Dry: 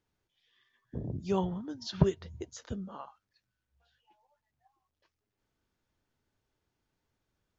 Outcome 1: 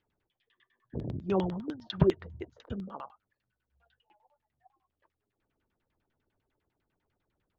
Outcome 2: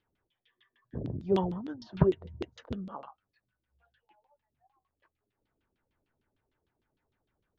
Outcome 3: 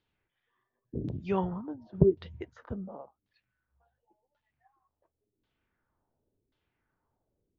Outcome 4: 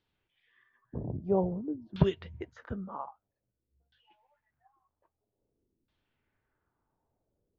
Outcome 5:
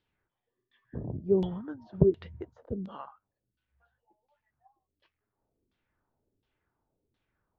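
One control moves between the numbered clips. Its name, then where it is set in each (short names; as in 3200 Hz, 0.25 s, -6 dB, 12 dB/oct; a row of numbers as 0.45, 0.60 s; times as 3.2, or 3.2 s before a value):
LFO low-pass, rate: 10, 6.6, 0.92, 0.51, 1.4 Hz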